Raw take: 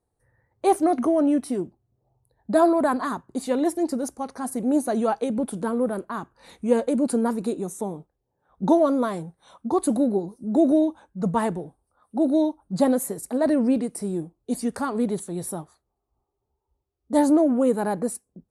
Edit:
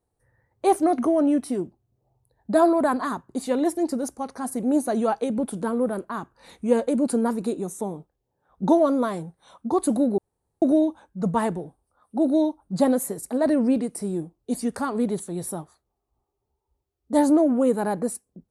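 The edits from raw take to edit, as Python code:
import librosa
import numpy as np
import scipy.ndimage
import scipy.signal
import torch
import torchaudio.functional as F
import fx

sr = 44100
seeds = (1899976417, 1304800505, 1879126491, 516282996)

y = fx.edit(x, sr, fx.room_tone_fill(start_s=10.18, length_s=0.44), tone=tone)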